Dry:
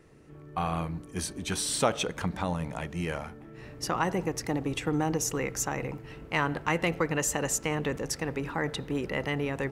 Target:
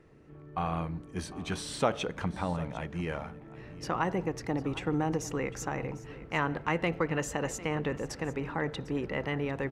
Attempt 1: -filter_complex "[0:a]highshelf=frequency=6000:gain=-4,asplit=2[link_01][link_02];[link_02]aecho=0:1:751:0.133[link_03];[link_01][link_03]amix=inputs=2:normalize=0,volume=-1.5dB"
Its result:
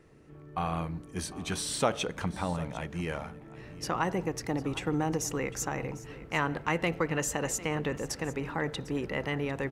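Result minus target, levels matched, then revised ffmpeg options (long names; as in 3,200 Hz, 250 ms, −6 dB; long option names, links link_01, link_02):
8,000 Hz band +6.0 dB
-filter_complex "[0:a]highshelf=frequency=6000:gain=-16,asplit=2[link_01][link_02];[link_02]aecho=0:1:751:0.133[link_03];[link_01][link_03]amix=inputs=2:normalize=0,volume=-1.5dB"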